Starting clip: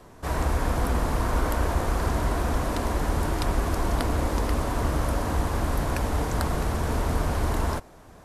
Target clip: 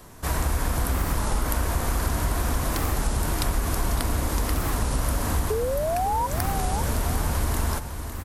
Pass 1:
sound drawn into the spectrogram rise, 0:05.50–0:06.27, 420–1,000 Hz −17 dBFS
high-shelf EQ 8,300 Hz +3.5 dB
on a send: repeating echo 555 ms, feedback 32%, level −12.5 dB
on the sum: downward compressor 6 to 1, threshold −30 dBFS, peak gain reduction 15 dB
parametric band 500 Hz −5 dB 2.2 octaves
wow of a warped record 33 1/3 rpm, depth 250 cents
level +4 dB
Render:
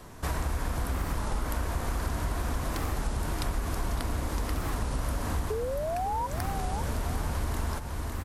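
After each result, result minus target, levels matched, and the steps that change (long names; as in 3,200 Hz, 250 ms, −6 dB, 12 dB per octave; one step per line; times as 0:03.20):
downward compressor: peak gain reduction +6 dB; 8,000 Hz band −4.0 dB
change: downward compressor 6 to 1, threshold −23 dBFS, peak gain reduction 9 dB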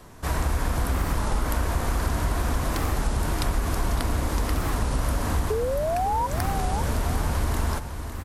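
8,000 Hz band −4.0 dB
change: high-shelf EQ 8,300 Hz +12.5 dB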